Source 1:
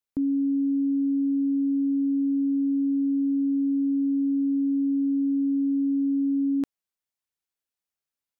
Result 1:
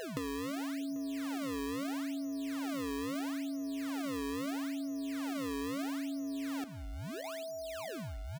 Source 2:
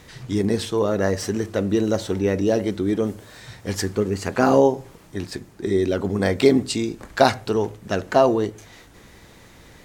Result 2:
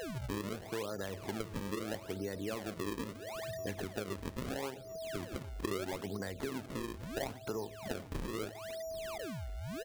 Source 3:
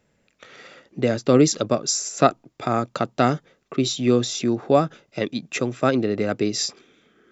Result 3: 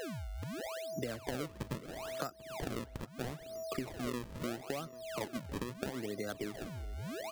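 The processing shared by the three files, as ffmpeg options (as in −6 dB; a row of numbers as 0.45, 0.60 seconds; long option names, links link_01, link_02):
-filter_complex "[0:a]afftfilt=real='re*gte(hypot(re,im),0.0251)':imag='im*gte(hypot(re,im),0.0251)':win_size=1024:overlap=0.75,firequalizer=gain_entry='entry(150,0);entry(1600,9);entry(7100,-20)':delay=0.05:min_phase=1,aeval=exprs='val(0)+0.02*sin(2*PI*650*n/s)':channel_layout=same,acrossover=split=140[link_01][link_02];[link_02]alimiter=limit=-9.5dB:level=0:latency=1:release=300[link_03];[link_01][link_03]amix=inputs=2:normalize=0,acompressor=threshold=-33dB:ratio=6,acrusher=samples=35:mix=1:aa=0.000001:lfo=1:lforange=56:lforate=0.76,asplit=2[link_04][link_05];[link_05]adelay=791,lowpass=frequency=2600:poles=1,volume=-18dB,asplit=2[link_06][link_07];[link_07]adelay=791,lowpass=frequency=2600:poles=1,volume=0.34,asplit=2[link_08][link_09];[link_09]adelay=791,lowpass=frequency=2600:poles=1,volume=0.34[link_10];[link_04][link_06][link_08][link_10]amix=inputs=4:normalize=0,volume=-4dB"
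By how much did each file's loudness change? −13.5, −19.0, −19.0 LU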